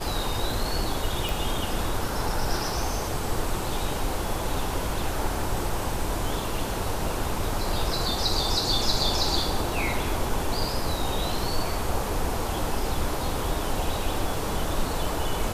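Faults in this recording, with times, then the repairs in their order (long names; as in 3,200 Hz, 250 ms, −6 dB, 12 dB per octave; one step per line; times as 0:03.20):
0:01.29: click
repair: click removal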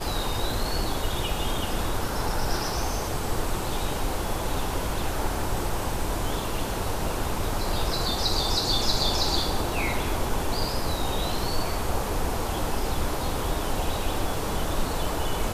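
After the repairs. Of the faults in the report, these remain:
none of them is left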